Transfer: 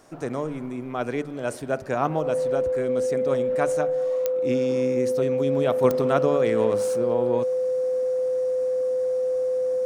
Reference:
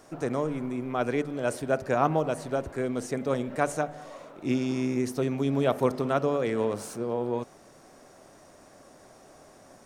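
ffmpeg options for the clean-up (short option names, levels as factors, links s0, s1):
-af "adeclick=t=4,bandreject=f=510:w=30,asetnsamples=n=441:p=0,asendcmd='5.84 volume volume -3.5dB',volume=1"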